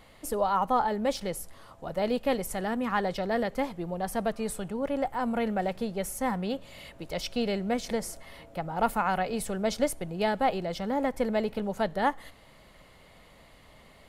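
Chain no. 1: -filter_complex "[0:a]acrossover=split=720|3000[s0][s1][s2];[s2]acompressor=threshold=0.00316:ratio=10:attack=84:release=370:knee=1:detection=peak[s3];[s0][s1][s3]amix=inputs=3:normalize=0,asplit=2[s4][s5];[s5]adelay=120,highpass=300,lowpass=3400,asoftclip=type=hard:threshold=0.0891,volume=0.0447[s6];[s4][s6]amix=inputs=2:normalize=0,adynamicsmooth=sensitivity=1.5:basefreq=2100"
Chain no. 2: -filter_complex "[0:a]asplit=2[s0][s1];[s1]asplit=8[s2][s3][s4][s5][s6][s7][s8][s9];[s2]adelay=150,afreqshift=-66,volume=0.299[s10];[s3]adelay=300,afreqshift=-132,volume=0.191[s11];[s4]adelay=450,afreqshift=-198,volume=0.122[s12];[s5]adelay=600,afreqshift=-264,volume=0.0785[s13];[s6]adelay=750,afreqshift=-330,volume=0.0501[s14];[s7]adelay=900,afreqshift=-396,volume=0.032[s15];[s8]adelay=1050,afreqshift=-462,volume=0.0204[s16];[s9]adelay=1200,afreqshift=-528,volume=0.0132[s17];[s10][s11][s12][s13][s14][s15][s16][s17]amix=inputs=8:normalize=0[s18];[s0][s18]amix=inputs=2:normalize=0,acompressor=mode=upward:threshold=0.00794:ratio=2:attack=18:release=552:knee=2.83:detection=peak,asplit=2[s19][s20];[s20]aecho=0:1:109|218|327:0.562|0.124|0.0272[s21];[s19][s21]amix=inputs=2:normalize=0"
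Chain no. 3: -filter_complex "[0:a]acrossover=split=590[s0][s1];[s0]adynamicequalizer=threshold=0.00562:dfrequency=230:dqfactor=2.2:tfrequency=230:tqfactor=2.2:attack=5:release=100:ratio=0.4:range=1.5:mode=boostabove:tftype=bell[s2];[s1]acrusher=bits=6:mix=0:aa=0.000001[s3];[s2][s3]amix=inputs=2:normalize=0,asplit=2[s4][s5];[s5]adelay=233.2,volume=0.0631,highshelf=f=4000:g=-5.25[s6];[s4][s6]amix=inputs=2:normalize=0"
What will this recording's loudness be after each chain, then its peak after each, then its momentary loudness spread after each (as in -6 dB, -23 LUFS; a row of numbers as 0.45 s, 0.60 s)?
-30.5 LUFS, -28.5 LUFS, -29.5 LUFS; -13.0 dBFS, -12.0 dBFS, -12.5 dBFS; 10 LU, 11 LU, 10 LU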